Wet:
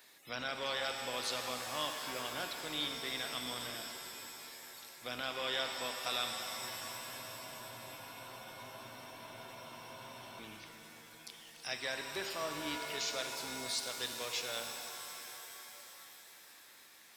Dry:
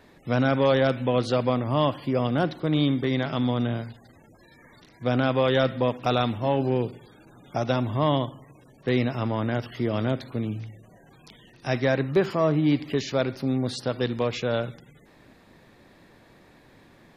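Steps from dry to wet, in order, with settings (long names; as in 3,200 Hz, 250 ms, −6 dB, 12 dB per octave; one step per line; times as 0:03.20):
sub-octave generator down 2 octaves, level −4 dB
first difference
in parallel at 0 dB: downward compressor, threshold −56 dBFS, peak gain reduction 20.5 dB
on the sum: frozen spectrum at 0:06.41, 3.99 s
reverb with rising layers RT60 3.7 s, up +7 semitones, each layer −2 dB, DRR 5 dB
level +1 dB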